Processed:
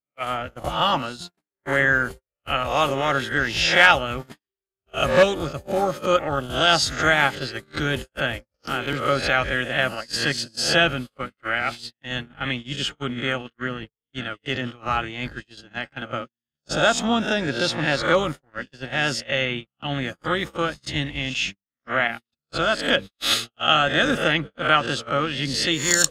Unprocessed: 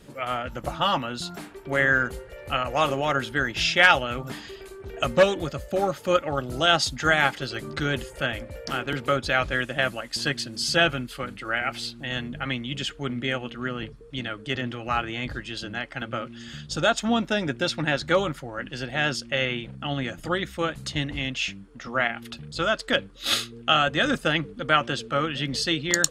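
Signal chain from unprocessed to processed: spectral swells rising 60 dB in 0.48 s; pre-echo 36 ms -20 dB; gate -29 dBFS, range -57 dB; gain +1 dB

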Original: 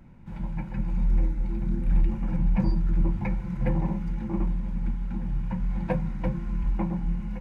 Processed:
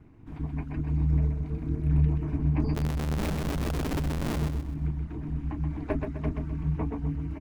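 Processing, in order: 2.75–4.42 Schmitt trigger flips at -33 dBFS; ring modulator 110 Hz; reverb removal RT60 0.62 s; on a send: feedback echo 0.128 s, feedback 38%, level -5 dB

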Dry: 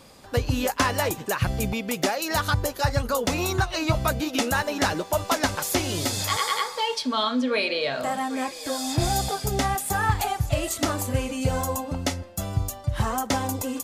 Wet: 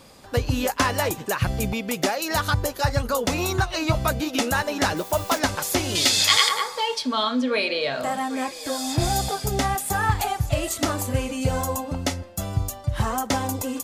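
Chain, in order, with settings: 4.96–5.38 added noise blue -43 dBFS; 5.95–6.49 weighting filter D; gain +1 dB

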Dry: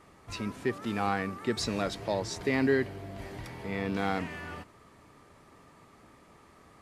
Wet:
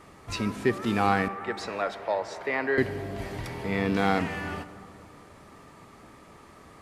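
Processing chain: 1.28–2.78 three-band isolator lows -20 dB, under 480 Hz, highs -15 dB, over 2400 Hz; on a send: reverb RT60 2.6 s, pre-delay 5 ms, DRR 14 dB; on the sum: gain +6 dB

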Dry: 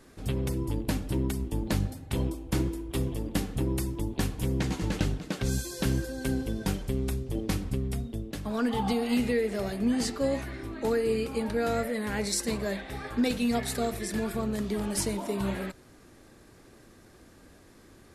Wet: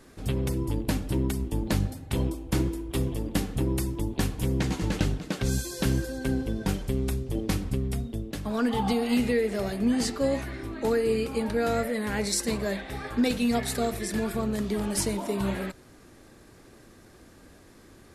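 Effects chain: 6.18–6.69 high shelf 4100 Hz -6.5 dB; gain +2 dB

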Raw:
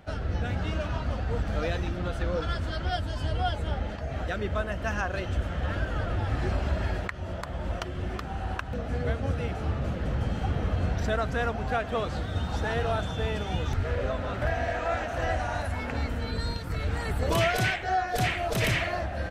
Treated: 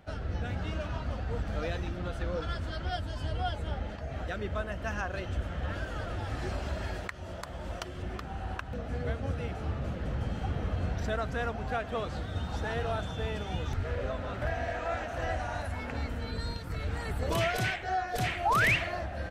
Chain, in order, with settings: 5.75–8.03 tone controls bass -3 dB, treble +6 dB; 18.45–18.76 painted sound rise 740–2900 Hz -21 dBFS; gain -4.5 dB

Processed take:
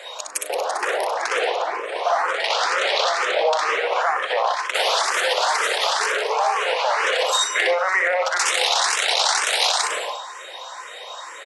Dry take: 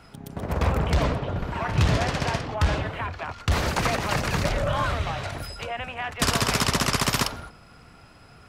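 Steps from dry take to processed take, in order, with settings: in parallel at +1 dB: negative-ratio compressor -33 dBFS, ratio -1; on the sum: steep high-pass 660 Hz 36 dB/oct; early reflections 45 ms -4.5 dB, 73 ms -14.5 dB; limiter -17 dBFS, peak gain reduction 9.5 dB; bell 9600 Hz +5.5 dB 2.5 oct; speed mistake 45 rpm record played at 33 rpm; endless phaser +2.1 Hz; gain +8 dB

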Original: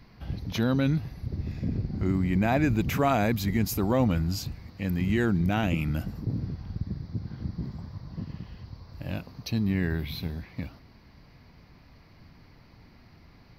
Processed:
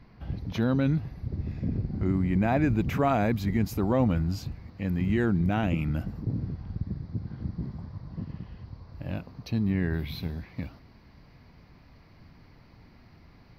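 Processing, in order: high shelf 3400 Hz -11.5 dB, from 9.93 s -4.5 dB

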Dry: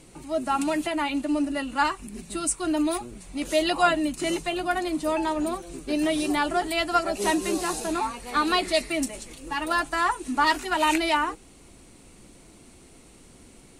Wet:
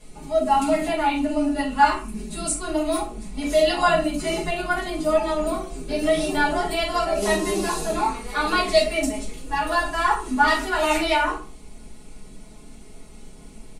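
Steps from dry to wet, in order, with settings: comb 4.7 ms, depth 59%; shoebox room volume 240 m³, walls furnished, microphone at 5.4 m; gain -8 dB

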